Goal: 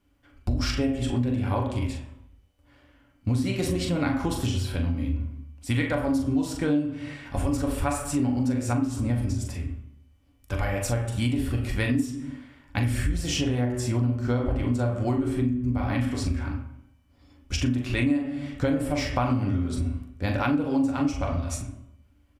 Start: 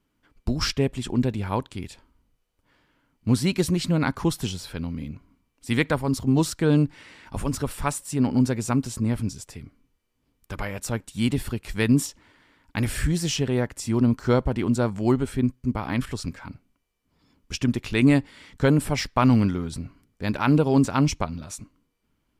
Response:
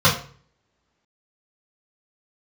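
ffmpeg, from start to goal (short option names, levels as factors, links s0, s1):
-filter_complex "[0:a]asplit=2[s0][s1];[s1]adelay=41,volume=0.447[s2];[s0][s2]amix=inputs=2:normalize=0,asplit=2[s3][s4];[1:a]atrim=start_sample=2205,afade=t=out:st=0.42:d=0.01,atrim=end_sample=18963,asetrate=23373,aresample=44100[s5];[s4][s5]afir=irnorm=-1:irlink=0,volume=0.0562[s6];[s3][s6]amix=inputs=2:normalize=0,acompressor=threshold=0.0794:ratio=6"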